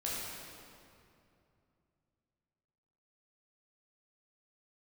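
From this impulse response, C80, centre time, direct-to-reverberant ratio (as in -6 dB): -0.5 dB, 149 ms, -7.0 dB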